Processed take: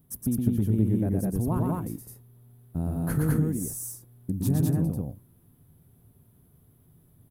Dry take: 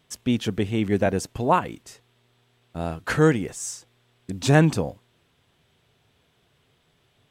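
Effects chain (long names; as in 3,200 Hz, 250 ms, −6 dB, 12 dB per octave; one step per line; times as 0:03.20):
drawn EQ curve 160 Hz 0 dB, 280 Hz −3 dB, 480 Hz −14 dB, 1,100 Hz −17 dB, 2,800 Hz −29 dB, 7,600 Hz −18 dB, 11,000 Hz +6 dB
downward compressor 5 to 1, threshold −32 dBFS, peak gain reduction 15 dB
on a send: loudspeakers that aren't time-aligned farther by 40 metres −3 dB, 71 metres −1 dB
on the sum: highs frequency-modulated by the lows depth 0.13 ms
level +7 dB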